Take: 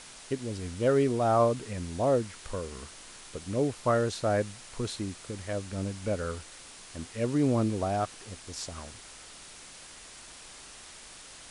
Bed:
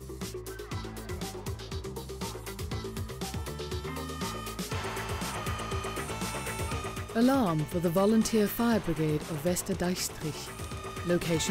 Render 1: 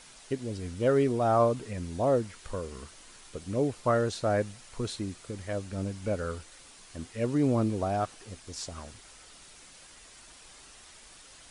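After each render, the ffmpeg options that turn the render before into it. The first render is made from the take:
-af "afftdn=nr=6:nf=-49"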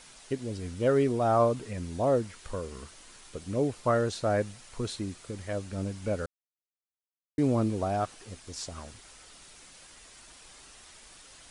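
-filter_complex "[0:a]asplit=3[a][b][c];[a]atrim=end=6.26,asetpts=PTS-STARTPTS,afade=t=out:st=6.256:d=0.004:c=hsin[d];[b]atrim=start=6.26:end=7.38,asetpts=PTS-STARTPTS,volume=0[e];[c]atrim=start=7.38,asetpts=PTS-STARTPTS,afade=t=in:d=0.004:c=hsin[f];[d][e][f]concat=n=3:v=0:a=1"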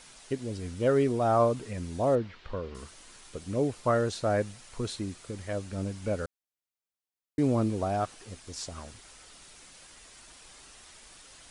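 -filter_complex "[0:a]asettb=1/sr,asplit=3[a][b][c];[a]atrim=end=2.154[d];[b]atrim=start=2.15:end=2.75,asetpts=PTS-STARTPTS,afade=t=in:d=0.004:c=qsin,afade=t=out:st=0.596:d=0.004:c=qsin,lowpass=f=4.1k:w=0.5412,lowpass=f=4.1k:w=1.3066[e];[c]atrim=start=2.746[f];[d][e]acrossfade=d=0.004:c1=hsin:c2=qsin[g];[g][f]acrossfade=d=0.004:c1=qsin:c2=hsin"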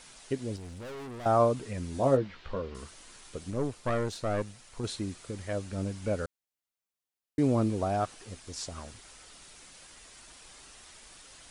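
-filter_complex "[0:a]asettb=1/sr,asplit=3[a][b][c];[a]atrim=end=0.564[d];[b]atrim=start=0.56:end=1.26,asetpts=PTS-STARTPTS,afade=t=in:d=0.004:c=qsin,afade=t=out:st=0.696:d=0.004:c=qsin,aeval=exprs='(tanh(100*val(0)+0.25)-tanh(0.25))/100':c=same[e];[c]atrim=start=1.256[f];[d][e]acrossfade=d=0.004:c1=hsin:c2=qsin[g];[g][f]acrossfade=d=0.004:c1=qsin:c2=hsin,asettb=1/sr,asplit=3[h][i][j];[h]atrim=end=1.924[k];[i]atrim=start=1.92:end=2.62,asetpts=PTS-STARTPTS,afade=t=in:d=0.004:c=qsin,afade=t=out:st=0.696:d=0.004:c=qsin,asplit=2[l][m];[m]adelay=15,volume=-6dB[n];[l][n]amix=inputs=2:normalize=0,atrim=end_sample=30870[o];[j]atrim=start=2.616[p];[k][o]acrossfade=d=0.004:c1=hsin:c2=qsin[q];[q][p]acrossfade=d=0.004:c1=qsin:c2=hsin,asettb=1/sr,asplit=3[r][s][t];[r]atrim=end=3.504[u];[s]atrim=start=3.5:end=4.84,asetpts=PTS-STARTPTS,afade=t=in:d=0.004:c=qsin,afade=t=out:st=1.336:d=0.004:c=qsin,aeval=exprs='(tanh(14.1*val(0)+0.65)-tanh(0.65))/14.1':c=same[v];[t]atrim=start=4.836[w];[u][v]acrossfade=d=0.004:c1=hsin:c2=qsin[x];[x][w]acrossfade=d=0.004:c1=qsin:c2=hsin"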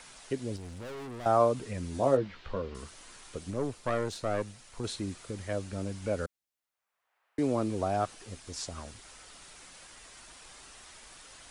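-filter_complex "[0:a]acrossover=split=280|590|2100[a][b][c][d];[a]alimiter=level_in=7dB:limit=-24dB:level=0:latency=1,volume=-7dB[e];[c]acompressor=mode=upward:threshold=-53dB:ratio=2.5[f];[e][b][f][d]amix=inputs=4:normalize=0"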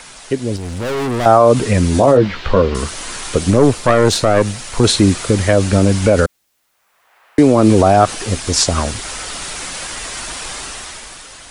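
-af "dynaudnorm=f=130:g=13:m=11dB,alimiter=level_in=14dB:limit=-1dB:release=50:level=0:latency=1"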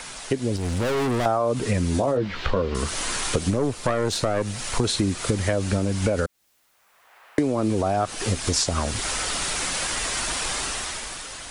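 -af "acompressor=threshold=-20dB:ratio=6"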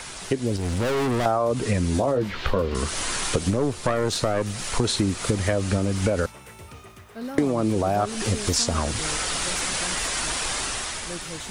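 -filter_complex "[1:a]volume=-9.5dB[a];[0:a][a]amix=inputs=2:normalize=0"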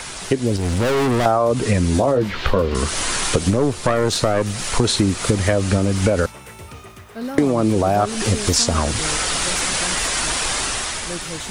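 -af "volume=5.5dB,alimiter=limit=-3dB:level=0:latency=1"

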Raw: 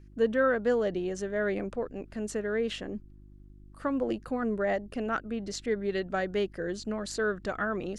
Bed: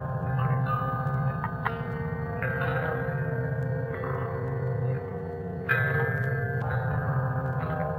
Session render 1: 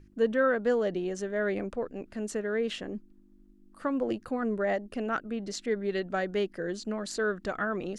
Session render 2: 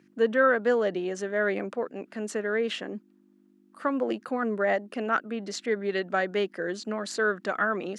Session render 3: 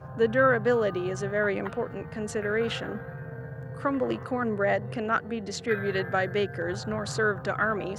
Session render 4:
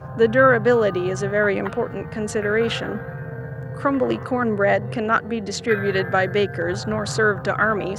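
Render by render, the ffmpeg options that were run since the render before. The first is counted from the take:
-af "bandreject=f=50:t=h:w=4,bandreject=f=100:t=h:w=4,bandreject=f=150:t=h:w=4"
-af "highpass=f=170:w=0.5412,highpass=f=170:w=1.3066,equalizer=f=1.5k:w=0.43:g=6"
-filter_complex "[1:a]volume=-9.5dB[a];[0:a][a]amix=inputs=2:normalize=0"
-af "volume=7dB"

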